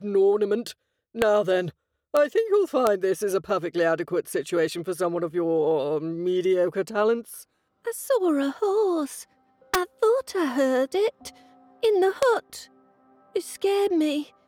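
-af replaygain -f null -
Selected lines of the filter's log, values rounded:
track_gain = +4.5 dB
track_peak = 0.205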